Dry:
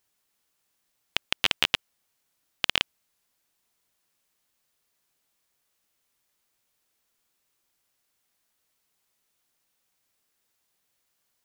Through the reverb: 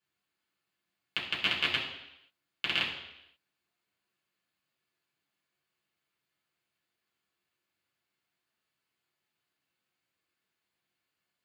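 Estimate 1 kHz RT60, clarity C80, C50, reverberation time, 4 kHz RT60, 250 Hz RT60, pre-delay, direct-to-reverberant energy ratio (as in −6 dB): 0.85 s, 8.5 dB, 5.5 dB, 0.85 s, 0.90 s, 0.80 s, 3 ms, −6.5 dB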